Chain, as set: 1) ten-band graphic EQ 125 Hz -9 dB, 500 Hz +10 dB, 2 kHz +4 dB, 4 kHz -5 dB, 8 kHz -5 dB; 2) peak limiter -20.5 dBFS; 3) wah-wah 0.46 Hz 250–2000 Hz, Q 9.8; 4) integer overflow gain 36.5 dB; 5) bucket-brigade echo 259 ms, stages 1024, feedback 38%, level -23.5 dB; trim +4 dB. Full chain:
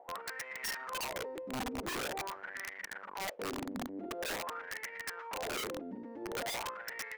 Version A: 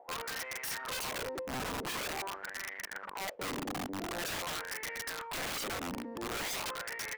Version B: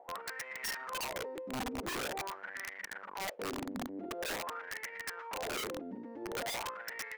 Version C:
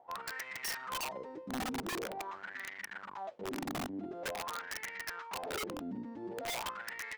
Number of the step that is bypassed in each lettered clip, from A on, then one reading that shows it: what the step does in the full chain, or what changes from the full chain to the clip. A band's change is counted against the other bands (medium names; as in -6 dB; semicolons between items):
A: 2, mean gain reduction 3.5 dB; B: 5, echo-to-direct -32.0 dB to none; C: 1, 250 Hz band +2.0 dB